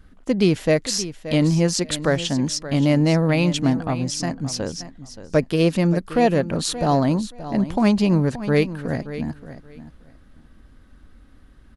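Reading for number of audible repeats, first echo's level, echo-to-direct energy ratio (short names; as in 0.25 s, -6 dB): 2, -13.5 dB, -13.5 dB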